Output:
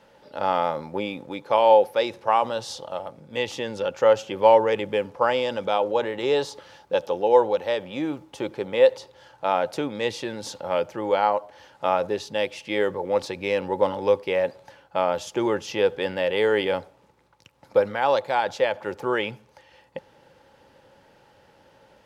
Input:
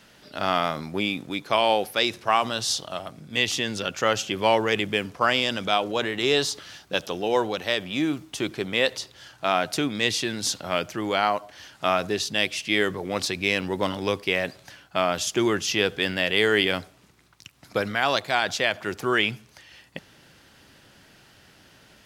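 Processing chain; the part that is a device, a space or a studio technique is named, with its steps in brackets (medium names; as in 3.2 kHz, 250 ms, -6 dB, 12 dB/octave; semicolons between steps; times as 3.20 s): inside a helmet (treble shelf 3.4 kHz -8 dB; small resonant body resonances 530/850 Hz, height 16 dB, ringing for 35 ms); trim -5 dB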